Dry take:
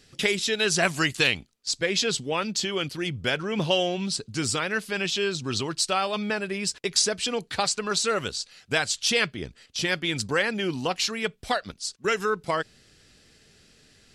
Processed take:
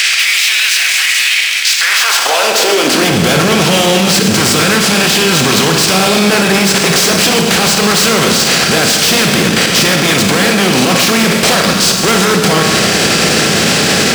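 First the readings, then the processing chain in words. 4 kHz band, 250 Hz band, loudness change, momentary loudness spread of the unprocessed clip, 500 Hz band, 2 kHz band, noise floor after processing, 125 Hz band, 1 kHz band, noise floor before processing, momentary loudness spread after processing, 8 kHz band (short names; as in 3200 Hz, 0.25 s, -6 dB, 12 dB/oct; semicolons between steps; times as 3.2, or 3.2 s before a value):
+18.0 dB, +19.0 dB, +17.0 dB, 7 LU, +15.0 dB, +17.0 dB, -13 dBFS, +19.0 dB, +17.0 dB, -59 dBFS, 1 LU, +18.5 dB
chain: per-bin compression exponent 0.4; sample leveller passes 2; hard clip -19 dBFS, distortion -5 dB; high-pass sweep 2200 Hz -> 170 Hz, 1.68–3.17; resonant low shelf 100 Hz +10.5 dB, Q 1.5; level quantiser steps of 12 dB; Schroeder reverb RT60 1.8 s, combs from 28 ms, DRR 2.5 dB; maximiser +17 dB; gain -1 dB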